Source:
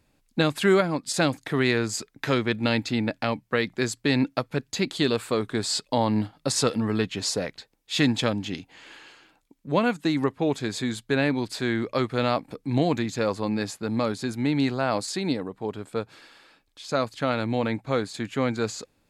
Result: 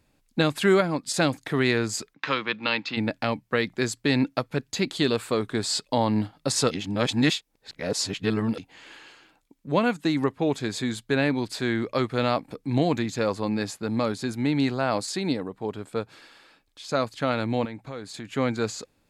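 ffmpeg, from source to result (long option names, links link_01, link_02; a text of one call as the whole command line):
ffmpeg -i in.wav -filter_complex "[0:a]asplit=3[link_01][link_02][link_03];[link_01]afade=type=out:start_time=2.13:duration=0.02[link_04];[link_02]highpass=frequency=180:width=0.5412,highpass=frequency=180:width=1.3066,equalizer=frequency=240:width_type=q:width=4:gain=-10,equalizer=frequency=380:width_type=q:width=4:gain=-10,equalizer=frequency=660:width_type=q:width=4:gain=-8,equalizer=frequency=1100:width_type=q:width=4:gain=7,equalizer=frequency=2700:width_type=q:width=4:gain=5,lowpass=frequency=5200:width=0.5412,lowpass=frequency=5200:width=1.3066,afade=type=in:start_time=2.13:duration=0.02,afade=type=out:start_time=2.96:duration=0.02[link_05];[link_03]afade=type=in:start_time=2.96:duration=0.02[link_06];[link_04][link_05][link_06]amix=inputs=3:normalize=0,asettb=1/sr,asplit=3[link_07][link_08][link_09];[link_07]atrim=end=17.654[link_10];[link_08]atrim=start=17.65:end=18.31,asetpts=PTS-STARTPTS,afade=type=in:duration=0.004:curve=qsin,afade=type=out:start_time=0.656:duration=0.004:curve=qsin,acompressor=threshold=-35dB:ratio=3:attack=3.2:release=140:knee=1:detection=peak[link_11];[link_09]atrim=start=18.306[link_12];[link_10][link_11]acrossfade=duration=0.004:curve1=hsin:curve2=qsin[link_13];[link_13][link_12]acrossfade=duration=0.004:curve1=qsin:curve2=hsin,asplit=3[link_14][link_15][link_16];[link_14]atrim=end=6.712[link_17];[link_15]atrim=start=6.708:end=8.582,asetpts=PTS-STARTPTS,areverse[link_18];[link_16]atrim=start=8.578[link_19];[link_17][link_18]acrossfade=duration=0.004:curve1=hsin:curve2=hsin[link_20];[link_20][link_19]acrossfade=duration=0.004:curve1=hsin:curve2=hsin" out.wav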